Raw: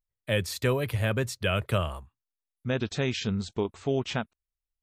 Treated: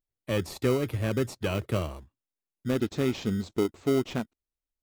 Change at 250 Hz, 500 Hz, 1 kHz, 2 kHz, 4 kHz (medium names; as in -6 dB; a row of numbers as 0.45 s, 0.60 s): +3.5 dB, +1.0 dB, -3.0 dB, -5.5 dB, -5.0 dB